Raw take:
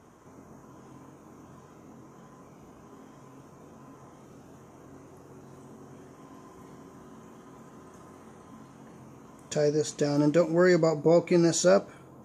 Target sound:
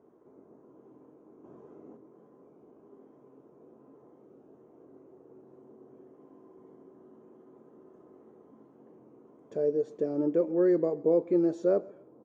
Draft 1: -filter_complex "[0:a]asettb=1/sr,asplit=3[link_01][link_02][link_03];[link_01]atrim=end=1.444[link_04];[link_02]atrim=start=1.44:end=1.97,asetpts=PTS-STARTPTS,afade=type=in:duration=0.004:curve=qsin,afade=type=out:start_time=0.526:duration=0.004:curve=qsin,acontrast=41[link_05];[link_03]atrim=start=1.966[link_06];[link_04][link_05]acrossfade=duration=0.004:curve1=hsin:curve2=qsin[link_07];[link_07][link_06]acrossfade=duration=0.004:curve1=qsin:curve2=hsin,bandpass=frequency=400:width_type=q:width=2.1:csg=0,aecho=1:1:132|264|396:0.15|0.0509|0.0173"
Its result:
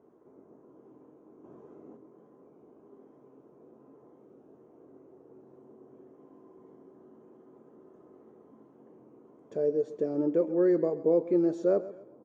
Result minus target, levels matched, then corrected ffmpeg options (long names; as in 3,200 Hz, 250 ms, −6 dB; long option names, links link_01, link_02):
echo-to-direct +7.5 dB
-filter_complex "[0:a]asettb=1/sr,asplit=3[link_01][link_02][link_03];[link_01]atrim=end=1.444[link_04];[link_02]atrim=start=1.44:end=1.97,asetpts=PTS-STARTPTS,afade=type=in:duration=0.004:curve=qsin,afade=type=out:start_time=0.526:duration=0.004:curve=qsin,acontrast=41[link_05];[link_03]atrim=start=1.966[link_06];[link_04][link_05]acrossfade=duration=0.004:curve1=hsin:curve2=qsin[link_07];[link_07][link_06]acrossfade=duration=0.004:curve1=qsin:curve2=hsin,bandpass=frequency=400:width_type=q:width=2.1:csg=0,aecho=1:1:132|264:0.0631|0.0215"